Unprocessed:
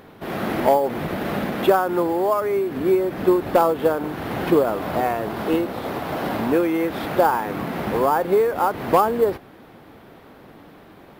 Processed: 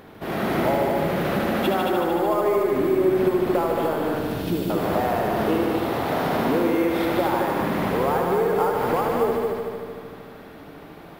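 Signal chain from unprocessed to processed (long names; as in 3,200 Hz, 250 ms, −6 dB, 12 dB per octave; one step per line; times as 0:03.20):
0:04.18–0:04.70: Chebyshev band-stop filter 240–3,800 Hz, order 2
downward compressor 6 to 1, threshold −20 dBFS, peak gain reduction 9.5 dB
soft clipping −11 dBFS, distortion −28 dB
echo machine with several playback heads 75 ms, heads all three, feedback 59%, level −7 dB
convolution reverb RT60 3.4 s, pre-delay 5 ms, DRR 15 dB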